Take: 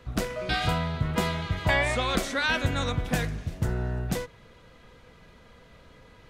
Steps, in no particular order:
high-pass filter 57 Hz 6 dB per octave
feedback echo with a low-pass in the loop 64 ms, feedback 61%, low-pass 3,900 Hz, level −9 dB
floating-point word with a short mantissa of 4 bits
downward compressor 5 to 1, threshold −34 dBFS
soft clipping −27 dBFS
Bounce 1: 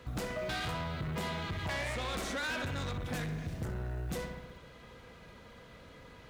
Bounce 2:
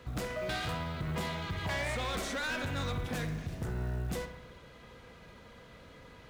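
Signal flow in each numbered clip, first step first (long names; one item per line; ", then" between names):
feedback echo with a low-pass in the loop, then floating-point word with a short mantissa, then soft clipping, then high-pass filter, then downward compressor
high-pass filter, then soft clipping, then downward compressor, then feedback echo with a low-pass in the loop, then floating-point word with a short mantissa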